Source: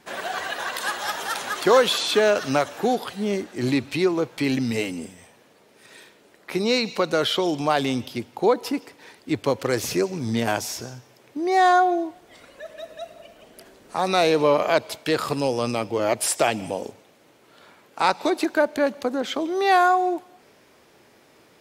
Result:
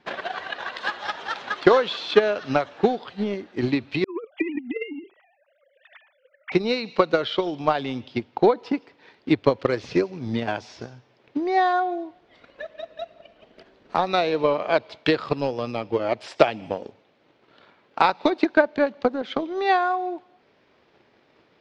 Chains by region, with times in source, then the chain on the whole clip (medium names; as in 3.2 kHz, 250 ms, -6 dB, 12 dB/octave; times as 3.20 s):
4.04–6.52 s: formants replaced by sine waves + compressor with a negative ratio -27 dBFS, ratio -0.5
whole clip: low-pass 4.4 kHz 24 dB/octave; transient shaper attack +12 dB, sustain -1 dB; trim -5.5 dB